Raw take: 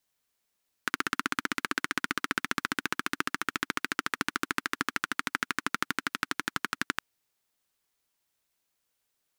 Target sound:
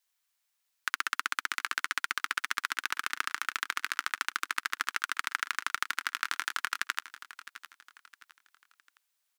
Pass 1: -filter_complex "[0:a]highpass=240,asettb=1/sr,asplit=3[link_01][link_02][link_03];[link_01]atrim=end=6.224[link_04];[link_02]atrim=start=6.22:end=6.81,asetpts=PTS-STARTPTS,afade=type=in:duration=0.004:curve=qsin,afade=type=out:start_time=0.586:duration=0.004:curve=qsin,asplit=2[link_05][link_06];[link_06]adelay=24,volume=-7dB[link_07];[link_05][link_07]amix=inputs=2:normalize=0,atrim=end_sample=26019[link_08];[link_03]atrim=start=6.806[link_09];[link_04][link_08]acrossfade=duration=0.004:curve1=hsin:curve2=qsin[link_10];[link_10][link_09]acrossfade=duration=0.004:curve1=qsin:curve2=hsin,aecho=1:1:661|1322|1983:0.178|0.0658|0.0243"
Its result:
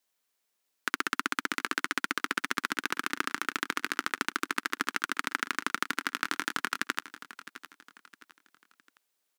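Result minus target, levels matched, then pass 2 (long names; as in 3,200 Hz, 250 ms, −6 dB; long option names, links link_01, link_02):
250 Hz band +18.5 dB
-filter_complex "[0:a]highpass=950,asettb=1/sr,asplit=3[link_01][link_02][link_03];[link_01]atrim=end=6.224[link_04];[link_02]atrim=start=6.22:end=6.81,asetpts=PTS-STARTPTS,afade=type=in:duration=0.004:curve=qsin,afade=type=out:start_time=0.586:duration=0.004:curve=qsin,asplit=2[link_05][link_06];[link_06]adelay=24,volume=-7dB[link_07];[link_05][link_07]amix=inputs=2:normalize=0,atrim=end_sample=26019[link_08];[link_03]atrim=start=6.806[link_09];[link_04][link_08]acrossfade=duration=0.004:curve1=hsin:curve2=qsin[link_10];[link_10][link_09]acrossfade=duration=0.004:curve1=qsin:curve2=hsin,aecho=1:1:661|1322|1983:0.178|0.0658|0.0243"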